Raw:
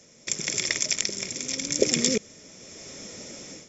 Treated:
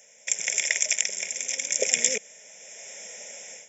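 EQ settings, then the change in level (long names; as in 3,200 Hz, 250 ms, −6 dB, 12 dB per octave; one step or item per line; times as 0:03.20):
high-pass filter 440 Hz 12 dB per octave
high-shelf EQ 3,200 Hz +8 dB
phaser with its sweep stopped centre 1,200 Hz, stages 6
+1.5 dB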